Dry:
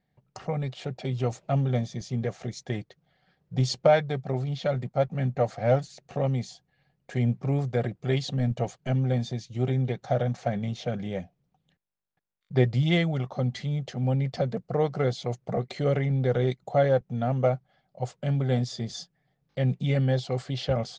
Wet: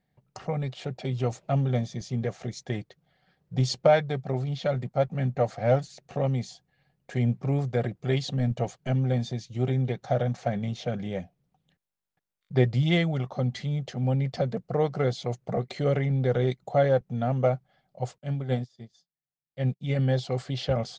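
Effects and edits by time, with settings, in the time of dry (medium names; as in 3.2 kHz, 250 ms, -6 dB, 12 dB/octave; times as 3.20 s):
18.18–19.99 s: upward expansion 2.5:1, over -42 dBFS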